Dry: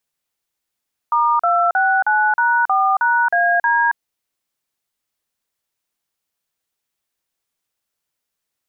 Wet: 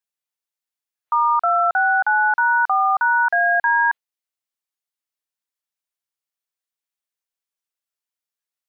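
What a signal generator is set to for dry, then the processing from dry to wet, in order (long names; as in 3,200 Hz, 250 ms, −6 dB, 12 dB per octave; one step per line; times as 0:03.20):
touch tones "*269#4#AD", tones 274 ms, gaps 41 ms, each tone −15.5 dBFS
noise reduction from a noise print of the clip's start 10 dB
low-shelf EQ 400 Hz −10.5 dB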